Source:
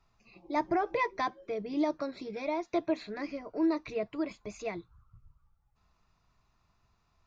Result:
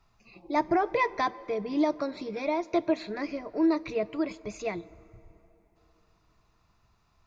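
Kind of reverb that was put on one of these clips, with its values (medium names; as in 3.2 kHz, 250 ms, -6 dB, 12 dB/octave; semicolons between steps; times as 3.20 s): plate-style reverb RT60 3.7 s, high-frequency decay 0.6×, DRR 20 dB; trim +4 dB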